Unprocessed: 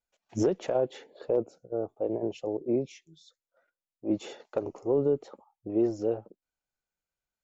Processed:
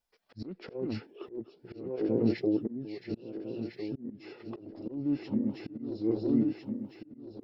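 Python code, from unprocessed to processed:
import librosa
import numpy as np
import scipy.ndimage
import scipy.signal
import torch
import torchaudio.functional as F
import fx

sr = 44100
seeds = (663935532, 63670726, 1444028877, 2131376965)

y = fx.reverse_delay_fb(x, sr, ms=677, feedback_pct=64, wet_db=-6.0)
y = fx.auto_swell(y, sr, attack_ms=597.0)
y = fx.formant_shift(y, sr, semitones=-5)
y = F.gain(torch.from_numpy(y), 5.0).numpy()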